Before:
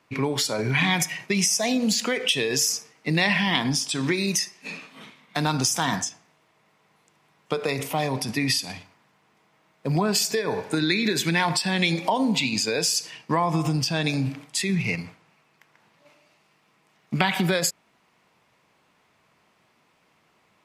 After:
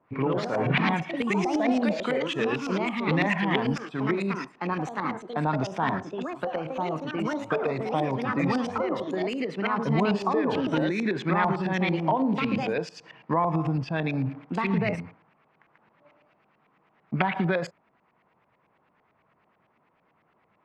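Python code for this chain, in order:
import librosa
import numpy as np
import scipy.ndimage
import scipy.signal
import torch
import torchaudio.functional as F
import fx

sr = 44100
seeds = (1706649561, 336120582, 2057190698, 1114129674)

y = fx.echo_pitch(x, sr, ms=107, semitones=3, count=3, db_per_echo=-3.0)
y = fx.filter_lfo_lowpass(y, sr, shape='saw_up', hz=9.0, low_hz=690.0, high_hz=2400.0, q=1.2)
y = F.gain(torch.from_numpy(y), -2.5).numpy()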